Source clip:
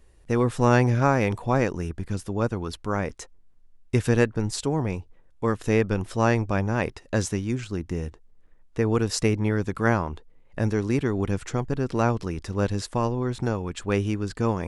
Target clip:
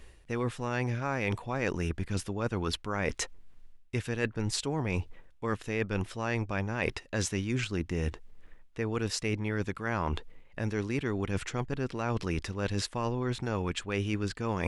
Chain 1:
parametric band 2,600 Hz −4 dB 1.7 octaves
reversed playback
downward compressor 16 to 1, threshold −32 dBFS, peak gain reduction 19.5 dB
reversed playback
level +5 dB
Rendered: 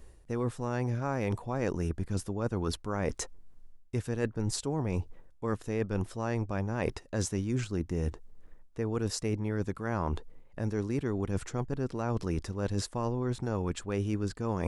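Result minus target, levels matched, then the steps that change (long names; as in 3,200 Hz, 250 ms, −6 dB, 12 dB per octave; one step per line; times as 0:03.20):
2,000 Hz band −7.0 dB
change: parametric band 2,600 Hz +7.5 dB 1.7 octaves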